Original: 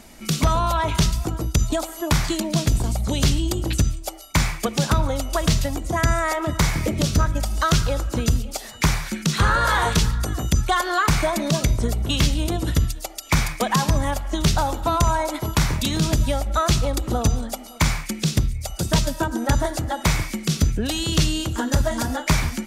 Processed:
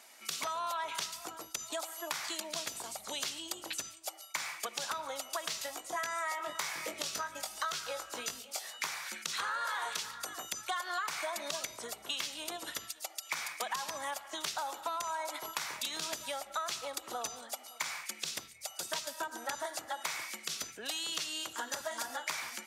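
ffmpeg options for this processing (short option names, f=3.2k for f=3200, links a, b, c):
-filter_complex "[0:a]asettb=1/sr,asplit=3[a][b][c];[a]atrim=end=5.524[d];[b]atrim=start=5.52:end=8.87,asetpts=PTS-STARTPTS,afade=t=in:d=0.004:c=qsin,afade=t=out:st=3.346:d=0.004:c=qsin,asplit=2[e][f];[f]adelay=20,volume=-6dB[g];[e][g]amix=inputs=2:normalize=0,atrim=end_sample=147735[h];[c]atrim=start=8.866[i];[d][h]acrossfade=d=0.004:c1=hsin:c2=qsin[j];[j][i]acrossfade=d=0.004:c1=qsin:c2=hsin,highpass=800,acompressor=threshold=-26dB:ratio=6,volume=-7dB"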